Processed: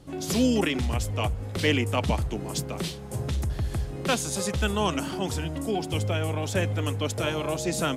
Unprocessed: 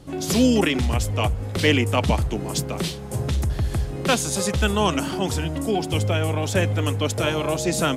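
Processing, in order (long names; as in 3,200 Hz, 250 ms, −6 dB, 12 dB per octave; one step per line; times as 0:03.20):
level −5 dB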